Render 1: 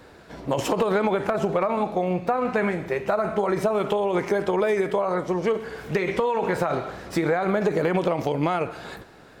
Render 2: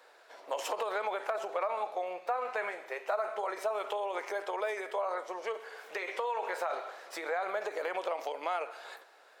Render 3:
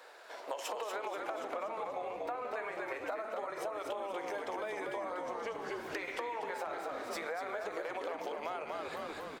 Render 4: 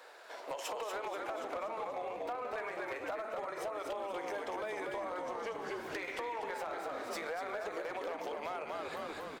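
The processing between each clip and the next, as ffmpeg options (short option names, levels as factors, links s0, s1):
-af "highpass=f=530:w=0.5412,highpass=f=530:w=1.3066,volume=0.422"
-filter_complex "[0:a]asplit=2[s0][s1];[s1]asplit=6[s2][s3][s4][s5][s6][s7];[s2]adelay=240,afreqshift=-68,volume=0.596[s8];[s3]adelay=480,afreqshift=-136,volume=0.292[s9];[s4]adelay=720,afreqshift=-204,volume=0.143[s10];[s5]adelay=960,afreqshift=-272,volume=0.07[s11];[s6]adelay=1200,afreqshift=-340,volume=0.0343[s12];[s7]adelay=1440,afreqshift=-408,volume=0.0168[s13];[s8][s9][s10][s11][s12][s13]amix=inputs=6:normalize=0[s14];[s0][s14]amix=inputs=2:normalize=0,acompressor=threshold=0.00891:ratio=6,volume=1.68"
-af "volume=44.7,asoftclip=hard,volume=0.0224"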